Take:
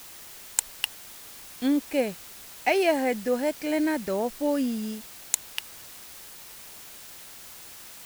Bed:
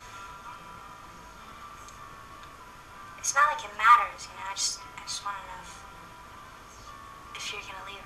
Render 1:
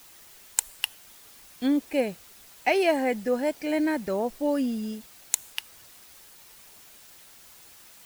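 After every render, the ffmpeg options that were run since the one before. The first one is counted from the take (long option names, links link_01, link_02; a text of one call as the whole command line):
ffmpeg -i in.wav -af "afftdn=noise_reduction=7:noise_floor=-45" out.wav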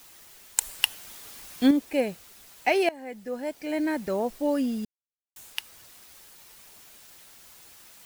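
ffmpeg -i in.wav -filter_complex "[0:a]asettb=1/sr,asplit=3[link_01][link_02][link_03];[link_01]atrim=end=0.614[link_04];[link_02]atrim=start=0.61:end=1.71,asetpts=PTS-STARTPTS,afade=type=in:duration=0.004:curve=qsin,afade=type=out:start_time=1.096:duration=0.004:curve=qsin,acontrast=57[link_05];[link_03]atrim=start=1.706[link_06];[link_04][link_05]acrossfade=duration=0.004:curve1=hsin:curve2=qsin[link_07];[link_07][link_06]acrossfade=duration=0.004:curve1=qsin:curve2=hsin,asplit=4[link_08][link_09][link_10][link_11];[link_08]atrim=end=2.89,asetpts=PTS-STARTPTS,afade=type=out:start_time=2.886:duration=0.004:curve=hsin:silence=0.0891251[link_12];[link_09]atrim=start=2.89:end=4.85,asetpts=PTS-STARTPTS,afade=type=in:duration=1.22:silence=0.0891251,afade=type=out:start_time=1.956:duration=0.004:curve=hsin[link_13];[link_10]atrim=start=4.85:end=5.36,asetpts=PTS-STARTPTS,volume=0[link_14];[link_11]atrim=start=5.36,asetpts=PTS-STARTPTS,afade=type=in:duration=0.004:curve=hsin[link_15];[link_12][link_13][link_14][link_15]concat=n=4:v=0:a=1" out.wav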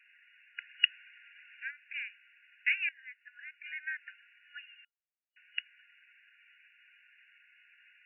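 ffmpeg -i in.wav -af "afftfilt=real='re*between(b*sr/4096,1400,2900)':imag='im*between(b*sr/4096,1400,2900)':win_size=4096:overlap=0.75" out.wav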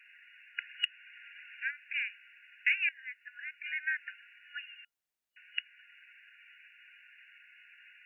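ffmpeg -i in.wav -af "acontrast=23,alimiter=limit=-15.5dB:level=0:latency=1:release=384" out.wav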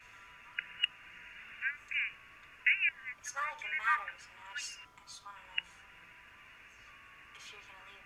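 ffmpeg -i in.wav -i bed.wav -filter_complex "[1:a]volume=-15.5dB[link_01];[0:a][link_01]amix=inputs=2:normalize=0" out.wav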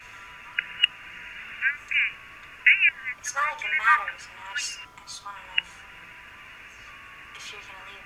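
ffmpeg -i in.wav -af "volume=11dB" out.wav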